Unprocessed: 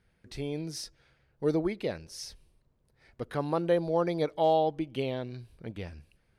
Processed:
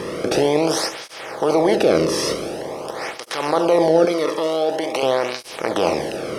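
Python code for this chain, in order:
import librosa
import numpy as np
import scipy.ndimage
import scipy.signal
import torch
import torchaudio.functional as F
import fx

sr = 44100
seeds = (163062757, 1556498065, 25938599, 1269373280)

p1 = fx.bin_compress(x, sr, power=0.4)
p2 = fx.over_compress(p1, sr, threshold_db=-29.0, ratio=-1.0)
p3 = p1 + (p2 * librosa.db_to_amplitude(0.5))
p4 = fx.highpass(p3, sr, hz=740.0, slope=6, at=(4.05, 5.03))
p5 = p4 + fx.room_flutter(p4, sr, wall_m=11.7, rt60_s=0.35, dry=0)
p6 = fx.flanger_cancel(p5, sr, hz=0.46, depth_ms=1.4)
y = p6 * librosa.db_to_amplitude(7.0)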